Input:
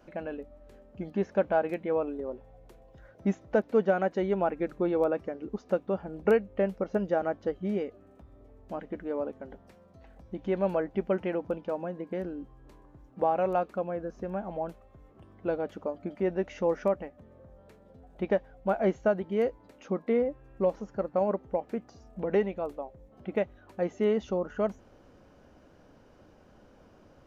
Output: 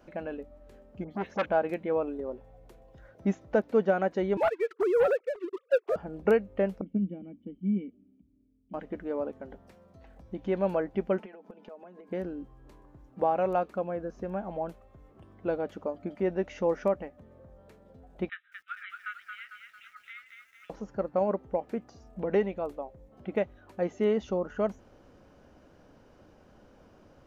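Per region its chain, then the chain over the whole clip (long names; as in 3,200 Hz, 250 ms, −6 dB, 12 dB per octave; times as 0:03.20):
0:01.04–0:01.46: all-pass dispersion highs, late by 75 ms, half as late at 2,000 Hz + saturating transformer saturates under 1,400 Hz
0:04.37–0:05.96: three sine waves on the formant tracks + Bessel high-pass filter 520 Hz + leveller curve on the samples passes 2
0:06.81–0:08.74: formant resonators in series i + parametric band 190 Hz +10.5 dB 0.74 octaves + multiband upward and downward expander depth 40%
0:11.19–0:12.08: elliptic high-pass filter 200 Hz + downward compressor 12 to 1, threshold −43 dBFS + comb filter 4.7 ms, depth 54%
0:18.29–0:20.70: linear-phase brick-wall band-pass 1,200–4,000 Hz + feedback echo at a low word length 225 ms, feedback 55%, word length 11 bits, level −5 dB
whole clip: no processing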